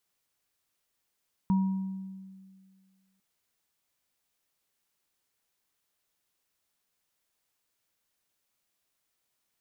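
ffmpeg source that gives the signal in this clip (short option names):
-f lavfi -i "aevalsrc='0.0944*pow(10,-3*t/1.93)*sin(2*PI*191*t)+0.0211*pow(10,-3*t/0.88)*sin(2*PI*952*t)':d=1.7:s=44100"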